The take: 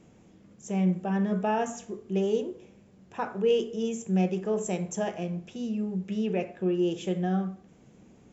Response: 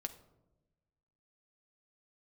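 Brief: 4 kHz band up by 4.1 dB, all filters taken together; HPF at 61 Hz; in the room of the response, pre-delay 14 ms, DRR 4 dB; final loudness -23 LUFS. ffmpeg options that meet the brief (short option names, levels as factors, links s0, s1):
-filter_complex "[0:a]highpass=61,equalizer=f=4000:t=o:g=6.5,asplit=2[s0][s1];[1:a]atrim=start_sample=2205,adelay=14[s2];[s1][s2]afir=irnorm=-1:irlink=0,volume=0.794[s3];[s0][s3]amix=inputs=2:normalize=0,volume=1.78"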